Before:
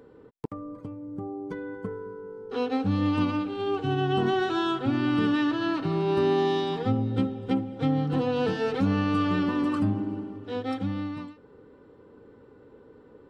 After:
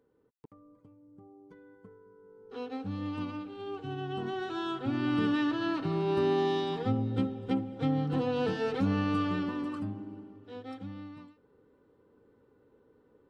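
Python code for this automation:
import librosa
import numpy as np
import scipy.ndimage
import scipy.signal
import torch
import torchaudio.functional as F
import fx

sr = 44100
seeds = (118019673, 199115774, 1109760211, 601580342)

y = fx.gain(x, sr, db=fx.line((2.04, -19.0), (2.56, -11.0), (4.27, -11.0), (5.13, -4.0), (9.13, -4.0), (9.96, -12.0)))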